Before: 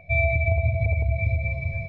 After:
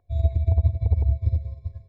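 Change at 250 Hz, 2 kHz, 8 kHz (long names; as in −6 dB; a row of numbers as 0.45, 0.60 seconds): −3.5 dB, below −35 dB, can't be measured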